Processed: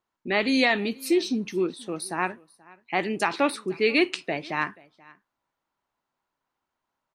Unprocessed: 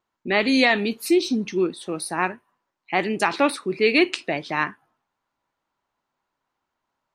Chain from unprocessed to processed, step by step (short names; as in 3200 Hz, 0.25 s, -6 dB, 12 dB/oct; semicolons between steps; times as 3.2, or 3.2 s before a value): echo 0.481 s -24 dB; gain -3.5 dB